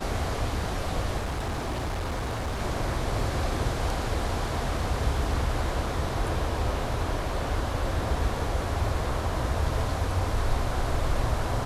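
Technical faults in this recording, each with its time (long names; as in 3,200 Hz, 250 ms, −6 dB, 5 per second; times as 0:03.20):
0:01.17–0:02.60: clipping −26.5 dBFS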